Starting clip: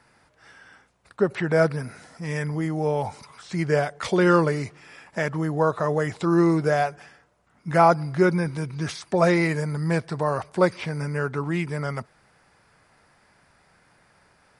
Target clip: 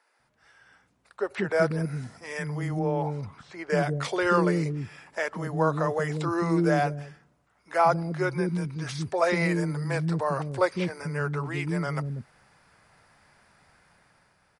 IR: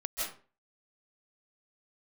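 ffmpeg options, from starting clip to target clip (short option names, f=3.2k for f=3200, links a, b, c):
-filter_complex "[0:a]acrossover=split=360[a][b];[a]adelay=190[c];[c][b]amix=inputs=2:normalize=0,dynaudnorm=f=220:g=9:m=8.5dB,asettb=1/sr,asplit=3[d][e][f];[d]atrim=end=2.794[g];[e]atrim=start=2.79:end=3.7,asetpts=PTS-STARTPTS,afade=t=in:d=0.004:c=qsin,afade=t=out:st=0.906:d=0.004:c=qsin,lowpass=f=1.7k:p=1[h];[f]atrim=start=3.696[i];[g][h]acrossfade=d=0.004:c1=hsin:c2=qsin[j];[j][i]acrossfade=d=0.004:c1=qsin:c2=hsin,volume=-8.5dB"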